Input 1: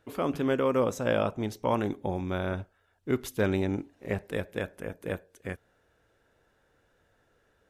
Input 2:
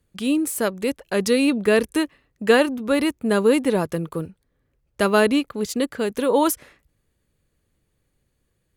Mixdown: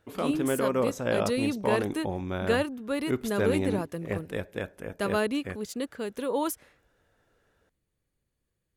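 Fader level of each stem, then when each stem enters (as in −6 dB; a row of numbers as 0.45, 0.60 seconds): −1.0, −10.0 decibels; 0.00, 0.00 seconds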